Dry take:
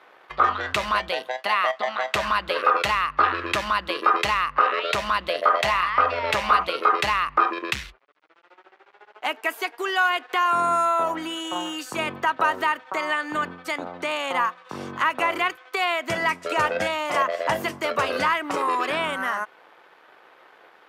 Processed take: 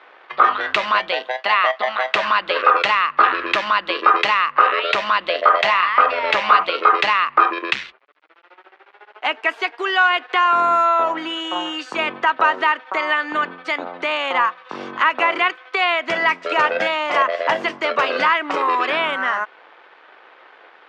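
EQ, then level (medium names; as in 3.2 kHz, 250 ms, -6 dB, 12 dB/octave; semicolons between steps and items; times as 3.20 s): band-pass 260–3300 Hz; distance through air 51 m; treble shelf 2.4 kHz +8.5 dB; +4.0 dB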